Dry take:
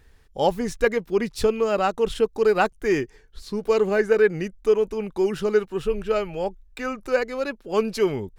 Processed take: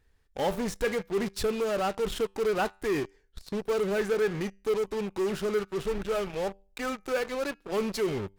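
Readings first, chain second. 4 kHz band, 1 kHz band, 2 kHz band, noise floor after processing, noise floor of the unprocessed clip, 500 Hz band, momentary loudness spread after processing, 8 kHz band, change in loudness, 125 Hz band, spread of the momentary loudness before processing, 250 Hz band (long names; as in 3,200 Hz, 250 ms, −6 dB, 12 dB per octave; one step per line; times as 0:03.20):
−2.5 dB, −6.5 dB, −6.5 dB, −66 dBFS, −55 dBFS, −7.0 dB, 7 LU, can't be measured, −7.0 dB, −4.0 dB, 10 LU, −5.0 dB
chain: tuned comb filter 98 Hz, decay 0.43 s, harmonics all, mix 40%
in parallel at −9 dB: fuzz pedal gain 39 dB, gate −38 dBFS
on the sum: level −9 dB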